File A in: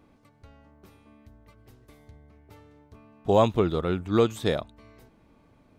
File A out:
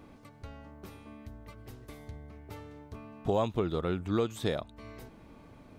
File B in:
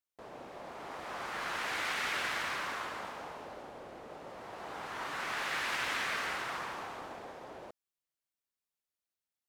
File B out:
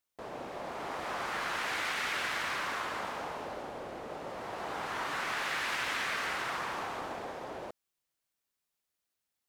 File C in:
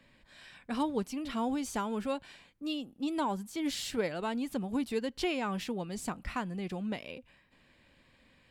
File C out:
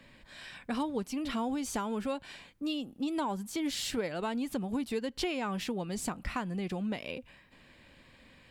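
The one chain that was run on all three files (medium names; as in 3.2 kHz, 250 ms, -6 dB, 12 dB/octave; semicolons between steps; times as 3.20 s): compression 2.5:1, threshold -39 dBFS; trim +6 dB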